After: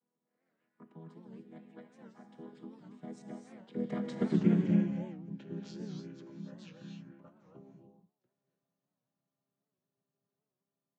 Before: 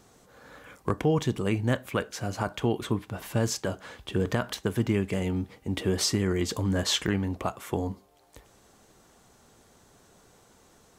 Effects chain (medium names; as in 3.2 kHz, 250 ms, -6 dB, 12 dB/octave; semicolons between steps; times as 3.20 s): vocoder on a held chord major triad, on D3; Doppler pass-by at 4.36 s, 34 m/s, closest 7.2 m; gated-style reverb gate 320 ms rising, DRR 1.5 dB; warped record 78 rpm, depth 160 cents